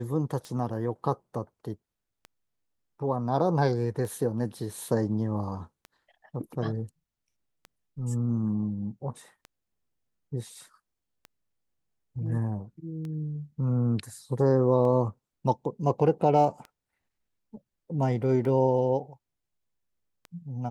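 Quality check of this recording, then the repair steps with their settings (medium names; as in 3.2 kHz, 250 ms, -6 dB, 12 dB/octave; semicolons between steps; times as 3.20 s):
tick 33 1/3 rpm -27 dBFS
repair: de-click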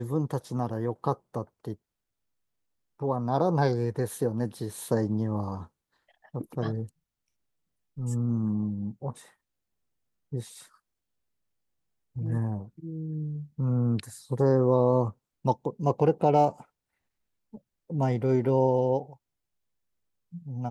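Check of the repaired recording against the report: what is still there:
nothing left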